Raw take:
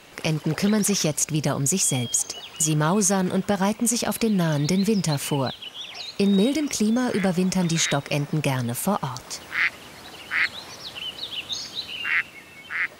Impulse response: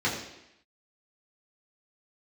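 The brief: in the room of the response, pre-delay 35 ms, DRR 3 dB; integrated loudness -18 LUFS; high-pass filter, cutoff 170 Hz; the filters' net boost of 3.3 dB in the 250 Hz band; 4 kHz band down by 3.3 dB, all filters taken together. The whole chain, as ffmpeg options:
-filter_complex "[0:a]highpass=170,equalizer=f=250:t=o:g=6.5,equalizer=f=4000:t=o:g=-4.5,asplit=2[s0][s1];[1:a]atrim=start_sample=2205,adelay=35[s2];[s1][s2]afir=irnorm=-1:irlink=0,volume=0.188[s3];[s0][s3]amix=inputs=2:normalize=0,volume=1.19"

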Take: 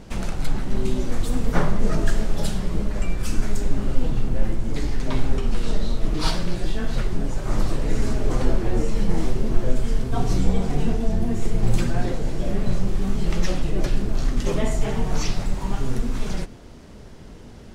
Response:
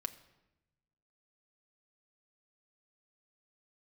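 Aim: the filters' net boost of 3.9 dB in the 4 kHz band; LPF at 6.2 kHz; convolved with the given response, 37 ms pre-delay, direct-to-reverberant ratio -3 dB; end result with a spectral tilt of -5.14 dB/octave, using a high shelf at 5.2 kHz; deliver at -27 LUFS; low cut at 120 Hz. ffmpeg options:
-filter_complex "[0:a]highpass=120,lowpass=6200,equalizer=f=4000:t=o:g=8,highshelf=f=5200:g=-5.5,asplit=2[s0][s1];[1:a]atrim=start_sample=2205,adelay=37[s2];[s1][s2]afir=irnorm=-1:irlink=0,volume=1.68[s3];[s0][s3]amix=inputs=2:normalize=0,volume=0.708"

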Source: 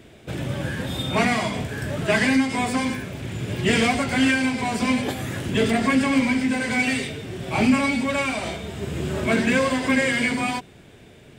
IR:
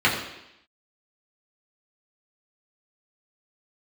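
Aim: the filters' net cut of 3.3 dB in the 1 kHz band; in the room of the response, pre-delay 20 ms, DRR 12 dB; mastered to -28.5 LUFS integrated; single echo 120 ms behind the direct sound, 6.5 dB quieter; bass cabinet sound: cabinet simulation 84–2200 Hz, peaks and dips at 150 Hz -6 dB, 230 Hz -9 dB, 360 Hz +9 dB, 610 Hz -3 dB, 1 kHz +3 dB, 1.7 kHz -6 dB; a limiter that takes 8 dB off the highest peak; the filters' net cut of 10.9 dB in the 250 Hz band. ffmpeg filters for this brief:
-filter_complex "[0:a]equalizer=f=250:t=o:g=-9,equalizer=f=1000:t=o:g=-4.5,alimiter=limit=0.133:level=0:latency=1,aecho=1:1:120:0.473,asplit=2[s0][s1];[1:a]atrim=start_sample=2205,adelay=20[s2];[s1][s2]afir=irnorm=-1:irlink=0,volume=0.0282[s3];[s0][s3]amix=inputs=2:normalize=0,highpass=f=84:w=0.5412,highpass=f=84:w=1.3066,equalizer=f=150:t=q:w=4:g=-6,equalizer=f=230:t=q:w=4:g=-9,equalizer=f=360:t=q:w=4:g=9,equalizer=f=610:t=q:w=4:g=-3,equalizer=f=1000:t=q:w=4:g=3,equalizer=f=1700:t=q:w=4:g=-6,lowpass=f=2200:w=0.5412,lowpass=f=2200:w=1.3066,volume=1.12"

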